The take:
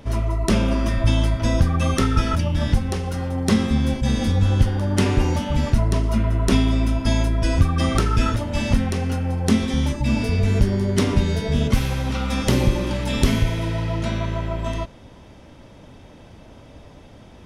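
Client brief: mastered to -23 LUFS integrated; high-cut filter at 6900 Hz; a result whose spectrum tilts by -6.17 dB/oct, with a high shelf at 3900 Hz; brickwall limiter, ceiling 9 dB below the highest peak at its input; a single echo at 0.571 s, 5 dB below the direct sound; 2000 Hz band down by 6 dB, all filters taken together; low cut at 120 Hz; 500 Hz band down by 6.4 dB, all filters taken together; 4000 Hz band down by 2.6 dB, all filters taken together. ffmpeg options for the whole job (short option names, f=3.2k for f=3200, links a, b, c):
-af "highpass=120,lowpass=6.9k,equalizer=f=500:t=o:g=-8.5,equalizer=f=2k:t=o:g=-8,highshelf=f=3.9k:g=7,equalizer=f=4k:t=o:g=-4.5,alimiter=limit=-16dB:level=0:latency=1,aecho=1:1:571:0.562,volume=3dB"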